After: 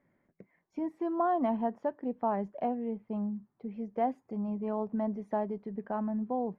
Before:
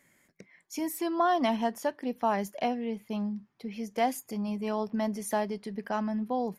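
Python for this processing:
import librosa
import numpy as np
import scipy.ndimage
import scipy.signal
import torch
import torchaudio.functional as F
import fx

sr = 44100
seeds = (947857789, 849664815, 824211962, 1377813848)

y = scipy.signal.sosfilt(scipy.signal.butter(2, 1000.0, 'lowpass', fs=sr, output='sos'), x)
y = y * librosa.db_to_amplitude(-1.5)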